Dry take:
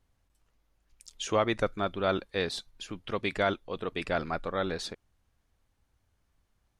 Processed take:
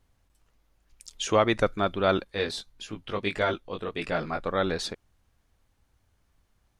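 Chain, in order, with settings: 2.24–4.46 chorus 1.6 Hz, delay 18 ms, depth 2.5 ms; gain +4.5 dB

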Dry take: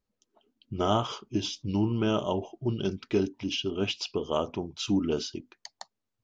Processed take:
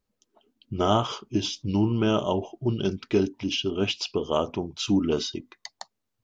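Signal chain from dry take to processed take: 5.12–5.69 small resonant body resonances 1100/2000/3700 Hz, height 13 dB; gain +3.5 dB

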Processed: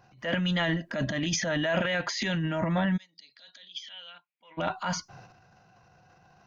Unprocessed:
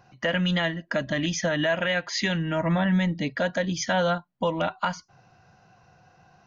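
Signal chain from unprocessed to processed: transient shaper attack -7 dB, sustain +11 dB; 2.96–4.57 band-pass 5300 Hz -> 2100 Hz, Q 7.6; gain -3 dB

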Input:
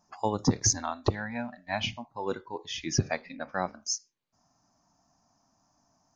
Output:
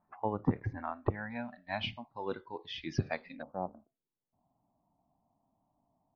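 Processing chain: steep low-pass 2300 Hz 36 dB/oct, from 1.29 s 4400 Hz, from 3.41 s 960 Hz; gain -5 dB

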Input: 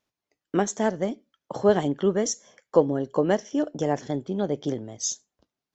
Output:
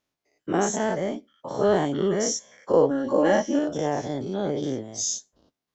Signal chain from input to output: spectral dilation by 0.12 s; 2.9–3.59 comb 3.6 ms, depth 74%; gain -4.5 dB

